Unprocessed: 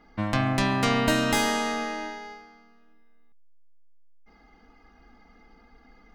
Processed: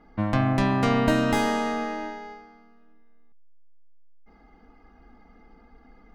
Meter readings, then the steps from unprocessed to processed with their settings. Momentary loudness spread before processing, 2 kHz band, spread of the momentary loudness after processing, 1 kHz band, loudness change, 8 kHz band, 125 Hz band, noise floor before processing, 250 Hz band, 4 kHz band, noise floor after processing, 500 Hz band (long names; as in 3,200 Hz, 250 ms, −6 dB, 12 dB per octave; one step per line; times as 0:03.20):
14 LU, −2.5 dB, 14 LU, +1.0 dB, +1.0 dB, −7.5 dB, +3.0 dB, −57 dBFS, +3.0 dB, −5.5 dB, −55 dBFS, +2.0 dB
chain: high-shelf EQ 2,000 Hz −11.5 dB
level +3 dB